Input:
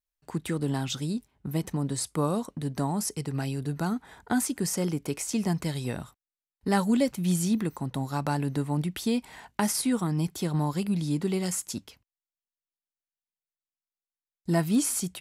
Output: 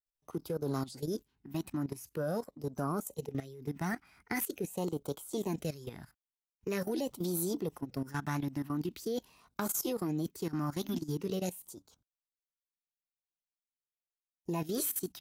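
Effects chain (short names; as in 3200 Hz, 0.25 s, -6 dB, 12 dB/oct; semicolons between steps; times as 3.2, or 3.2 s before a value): LFO notch sine 0.44 Hz 440–1900 Hz; formant shift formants +5 st; level quantiser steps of 15 dB; gain -3 dB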